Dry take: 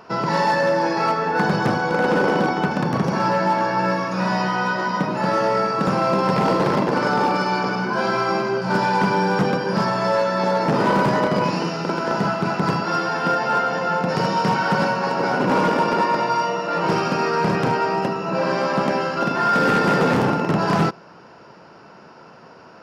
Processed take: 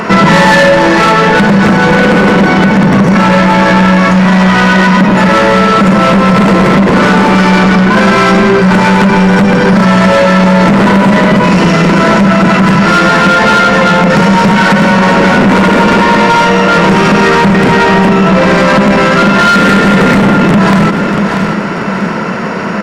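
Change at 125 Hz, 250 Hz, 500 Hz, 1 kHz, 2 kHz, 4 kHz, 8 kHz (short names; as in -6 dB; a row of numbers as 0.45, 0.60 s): +16.0, +17.5, +12.0, +11.0, +15.5, +15.5, +16.5 dB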